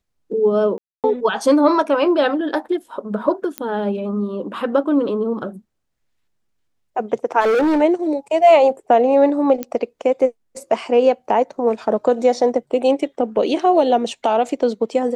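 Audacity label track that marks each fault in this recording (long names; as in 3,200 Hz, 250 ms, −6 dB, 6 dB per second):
0.780000	1.040000	drop-out 258 ms
3.580000	3.580000	click −8 dBFS
7.400000	7.820000	clipping −14 dBFS
9.630000	9.630000	click −10 dBFS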